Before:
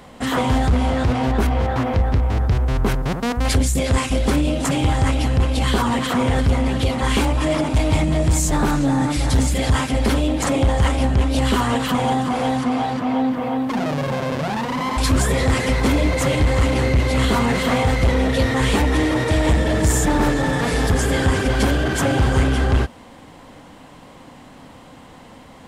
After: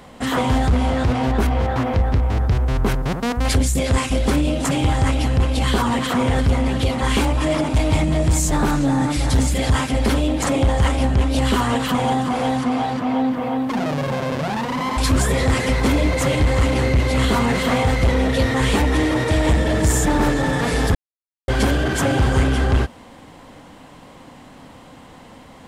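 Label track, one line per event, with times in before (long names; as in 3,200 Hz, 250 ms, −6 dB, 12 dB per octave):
20.950000	21.480000	silence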